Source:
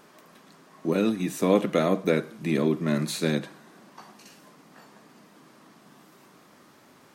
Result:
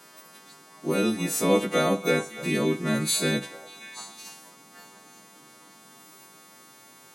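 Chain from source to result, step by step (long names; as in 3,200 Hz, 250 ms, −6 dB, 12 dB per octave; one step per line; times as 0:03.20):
every partial snapped to a pitch grid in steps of 2 semitones
0:02.89–0:03.43: notch filter 5,500 Hz, Q 5.3
echo through a band-pass that steps 292 ms, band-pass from 850 Hz, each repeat 1.4 octaves, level −8 dB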